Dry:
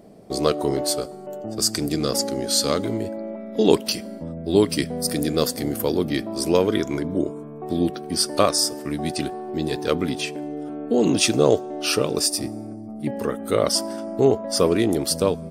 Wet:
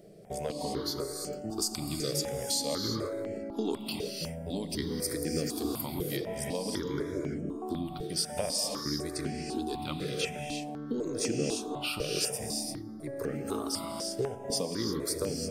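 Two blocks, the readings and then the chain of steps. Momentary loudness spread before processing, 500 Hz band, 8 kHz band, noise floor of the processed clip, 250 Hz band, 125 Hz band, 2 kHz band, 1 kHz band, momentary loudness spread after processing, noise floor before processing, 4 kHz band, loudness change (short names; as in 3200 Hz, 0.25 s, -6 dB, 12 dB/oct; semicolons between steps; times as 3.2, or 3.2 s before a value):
11 LU, -12.5 dB, -8.5 dB, -42 dBFS, -11.0 dB, -9.0 dB, -9.5 dB, -11.0 dB, 6 LU, -36 dBFS, -9.0 dB, -11.0 dB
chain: compressor, threshold -24 dBFS, peak gain reduction 13.5 dB; non-linear reverb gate 0.37 s rising, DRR 2.5 dB; step phaser 4 Hz 250–3700 Hz; gain -3 dB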